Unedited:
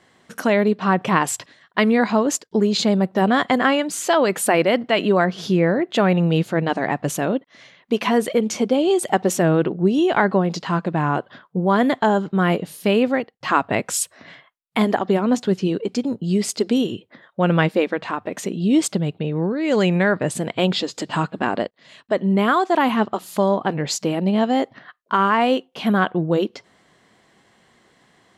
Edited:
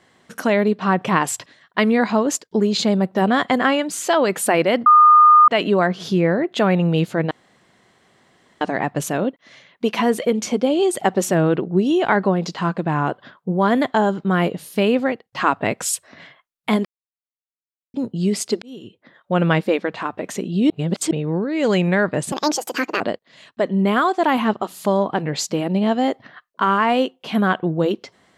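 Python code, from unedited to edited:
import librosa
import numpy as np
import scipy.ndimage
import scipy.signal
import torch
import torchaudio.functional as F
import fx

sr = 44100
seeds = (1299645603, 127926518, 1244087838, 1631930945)

y = fx.edit(x, sr, fx.insert_tone(at_s=4.86, length_s=0.62, hz=1220.0, db=-6.5),
    fx.insert_room_tone(at_s=6.69, length_s=1.3),
    fx.silence(start_s=14.93, length_s=1.09),
    fx.fade_in_span(start_s=16.7, length_s=0.72),
    fx.reverse_span(start_s=18.78, length_s=0.41),
    fx.speed_span(start_s=20.4, length_s=1.12, speed=1.64), tone=tone)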